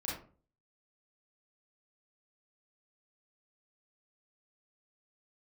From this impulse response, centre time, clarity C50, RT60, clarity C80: 46 ms, 2.0 dB, 0.40 s, 8.5 dB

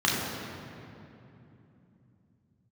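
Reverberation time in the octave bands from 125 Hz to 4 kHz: 5.0, 4.8, 3.2, 2.7, 2.4, 1.7 s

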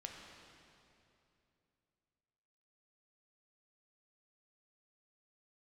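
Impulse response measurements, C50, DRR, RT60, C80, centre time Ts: 2.0 dB, 0.5 dB, 2.8 s, 3.0 dB, 95 ms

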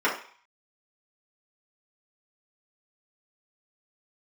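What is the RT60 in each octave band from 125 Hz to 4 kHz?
0.30, 0.35, 0.40, 0.55, 0.55, 0.55 s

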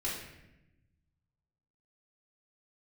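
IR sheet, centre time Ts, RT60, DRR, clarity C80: 55 ms, 0.90 s, -6.5 dB, 5.5 dB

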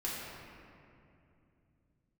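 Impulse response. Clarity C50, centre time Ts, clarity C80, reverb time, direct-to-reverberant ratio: -2.0 dB, 0.144 s, 0.0 dB, 2.7 s, -7.0 dB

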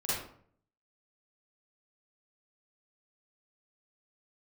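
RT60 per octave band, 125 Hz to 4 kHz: 0.80, 0.65, 0.60, 0.55, 0.45, 0.35 s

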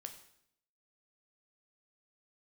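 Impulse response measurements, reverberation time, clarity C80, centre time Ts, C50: 0.70 s, 12.5 dB, 13 ms, 10.0 dB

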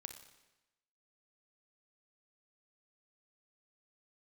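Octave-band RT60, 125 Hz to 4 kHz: 1.0, 1.0, 1.0, 1.0, 1.0, 0.95 s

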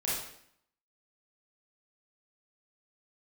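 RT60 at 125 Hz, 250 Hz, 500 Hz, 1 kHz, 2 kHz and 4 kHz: 0.70, 0.75, 0.65, 0.65, 0.65, 0.60 s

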